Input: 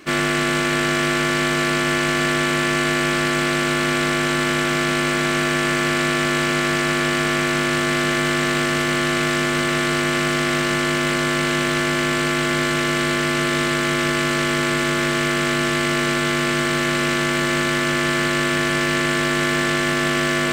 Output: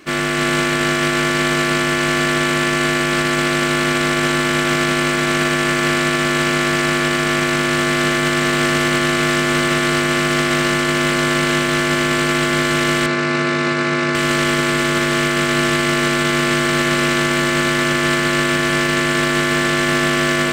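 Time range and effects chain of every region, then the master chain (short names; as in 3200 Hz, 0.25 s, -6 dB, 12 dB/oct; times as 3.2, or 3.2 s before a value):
13.06–14.15 BPF 100–5000 Hz + bell 3200 Hz -9 dB 0.23 oct + notch 1900 Hz, Q 18
whole clip: AGC; limiter -7.5 dBFS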